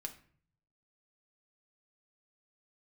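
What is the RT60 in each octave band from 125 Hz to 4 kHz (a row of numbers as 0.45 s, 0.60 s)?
1.1 s, 0.70 s, 0.55 s, 0.45 s, 0.50 s, 0.35 s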